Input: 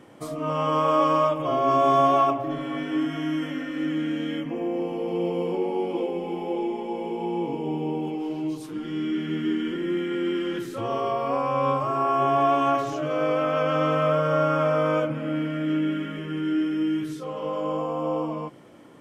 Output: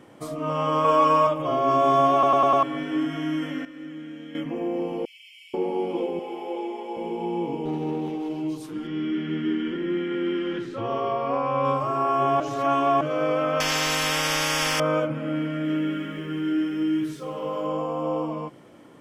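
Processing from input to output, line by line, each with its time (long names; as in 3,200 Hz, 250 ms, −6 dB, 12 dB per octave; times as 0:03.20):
0:00.84–0:01.27: comb filter 4.4 ms, depth 81%
0:02.13: stutter in place 0.10 s, 5 plays
0:03.65–0:04.35: clip gain −11 dB
0:05.05–0:05.54: Chebyshev high-pass filter 2,100 Hz, order 6
0:06.19–0:06.97: Bessel high-pass filter 410 Hz, order 4
0:07.65–0:08.30: windowed peak hold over 5 samples
0:08.87–0:11.65: low-pass filter 4,300 Hz
0:12.40–0:13.01: reverse
0:13.60–0:14.80: every bin compressed towards the loudest bin 10 to 1
0:15.55–0:17.67: feedback echo at a low word length 99 ms, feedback 55%, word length 9 bits, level −13.5 dB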